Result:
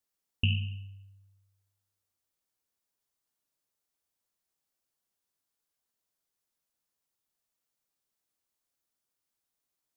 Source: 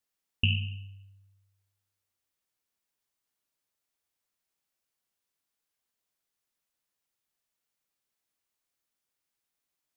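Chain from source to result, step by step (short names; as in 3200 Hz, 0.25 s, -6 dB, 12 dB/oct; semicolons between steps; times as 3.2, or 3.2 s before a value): bell 2300 Hz -4.5 dB 1.4 oct; de-hum 205.9 Hz, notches 4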